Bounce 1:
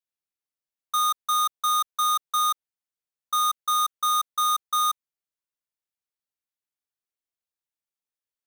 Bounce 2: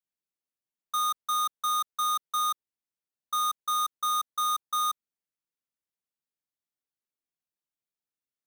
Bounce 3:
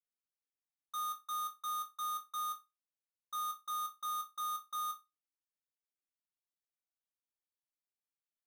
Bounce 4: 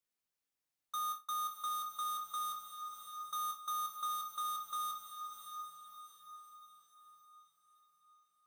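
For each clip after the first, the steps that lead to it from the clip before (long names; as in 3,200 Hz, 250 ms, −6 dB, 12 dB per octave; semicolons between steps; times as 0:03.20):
parametric band 230 Hz +7 dB 2.1 octaves; level −5 dB
resonators tuned to a chord G2 major, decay 0.22 s
brickwall limiter −38 dBFS, peak gain reduction 5 dB; feedback delay with all-pass diffusion 655 ms, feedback 46%, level −7 dB; level +4.5 dB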